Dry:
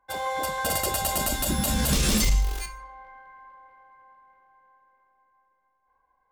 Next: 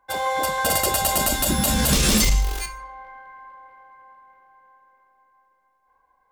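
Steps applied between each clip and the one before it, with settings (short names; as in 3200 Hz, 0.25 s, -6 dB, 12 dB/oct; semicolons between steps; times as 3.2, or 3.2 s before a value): low shelf 160 Hz -3.5 dB; gain +5.5 dB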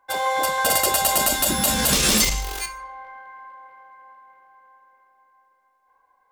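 low shelf 210 Hz -11 dB; gain +2 dB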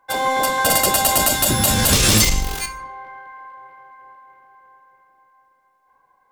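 octaver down 1 oct, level +2 dB; gain +3 dB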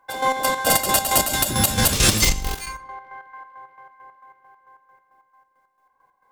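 chopper 4.5 Hz, depth 60%, duty 45%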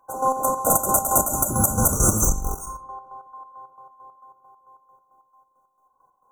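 brick-wall FIR band-stop 1500–5800 Hz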